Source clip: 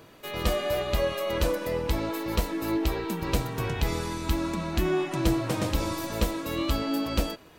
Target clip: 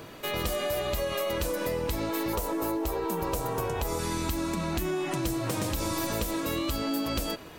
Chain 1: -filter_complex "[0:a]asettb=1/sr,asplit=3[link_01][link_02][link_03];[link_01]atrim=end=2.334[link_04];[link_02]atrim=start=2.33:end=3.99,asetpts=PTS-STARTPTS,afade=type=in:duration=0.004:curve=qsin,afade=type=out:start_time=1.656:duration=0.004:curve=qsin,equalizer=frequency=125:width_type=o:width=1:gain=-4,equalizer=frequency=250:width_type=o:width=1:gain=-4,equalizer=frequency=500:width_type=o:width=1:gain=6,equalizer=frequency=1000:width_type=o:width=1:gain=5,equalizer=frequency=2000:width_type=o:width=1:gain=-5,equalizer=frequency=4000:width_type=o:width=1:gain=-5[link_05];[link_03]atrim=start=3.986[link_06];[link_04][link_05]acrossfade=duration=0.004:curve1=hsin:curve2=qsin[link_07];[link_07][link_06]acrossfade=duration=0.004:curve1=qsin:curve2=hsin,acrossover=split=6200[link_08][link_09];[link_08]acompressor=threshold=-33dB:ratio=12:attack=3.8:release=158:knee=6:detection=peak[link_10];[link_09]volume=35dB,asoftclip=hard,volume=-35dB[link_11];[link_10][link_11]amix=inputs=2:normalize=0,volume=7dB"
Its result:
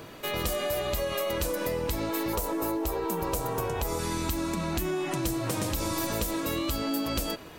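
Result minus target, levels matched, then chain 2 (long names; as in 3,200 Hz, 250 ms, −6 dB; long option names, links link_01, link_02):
gain into a clipping stage and back: distortion −9 dB
-filter_complex "[0:a]asettb=1/sr,asplit=3[link_01][link_02][link_03];[link_01]atrim=end=2.334[link_04];[link_02]atrim=start=2.33:end=3.99,asetpts=PTS-STARTPTS,afade=type=in:duration=0.004:curve=qsin,afade=type=out:start_time=1.656:duration=0.004:curve=qsin,equalizer=frequency=125:width_type=o:width=1:gain=-4,equalizer=frequency=250:width_type=o:width=1:gain=-4,equalizer=frequency=500:width_type=o:width=1:gain=6,equalizer=frequency=1000:width_type=o:width=1:gain=5,equalizer=frequency=2000:width_type=o:width=1:gain=-5,equalizer=frequency=4000:width_type=o:width=1:gain=-5[link_05];[link_03]atrim=start=3.986[link_06];[link_04][link_05]acrossfade=duration=0.004:curve1=hsin:curve2=qsin[link_07];[link_07][link_06]acrossfade=duration=0.004:curve1=qsin:curve2=hsin,acrossover=split=6200[link_08][link_09];[link_08]acompressor=threshold=-33dB:ratio=12:attack=3.8:release=158:knee=6:detection=peak[link_10];[link_09]volume=41.5dB,asoftclip=hard,volume=-41.5dB[link_11];[link_10][link_11]amix=inputs=2:normalize=0,volume=7dB"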